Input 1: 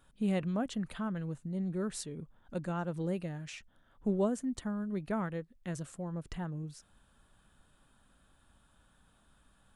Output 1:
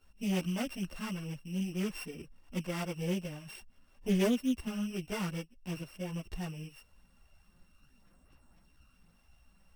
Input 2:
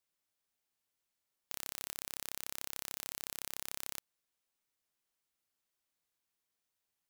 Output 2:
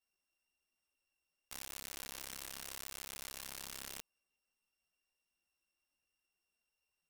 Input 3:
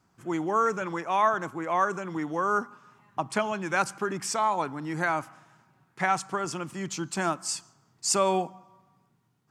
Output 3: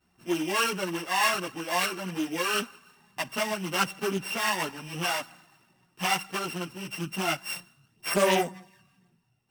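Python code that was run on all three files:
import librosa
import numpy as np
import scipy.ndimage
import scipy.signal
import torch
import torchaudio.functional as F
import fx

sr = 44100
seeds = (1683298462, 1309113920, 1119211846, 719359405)

y = np.r_[np.sort(x[:len(x) // 16 * 16].reshape(-1, 16), axis=1).ravel(), x[len(x) // 16 * 16:]]
y = fx.chorus_voices(y, sr, voices=6, hz=1.0, base_ms=14, depth_ms=3.0, mix_pct=65)
y = fx.doppler_dist(y, sr, depth_ms=0.19)
y = F.gain(torch.from_numpy(y), 1.5).numpy()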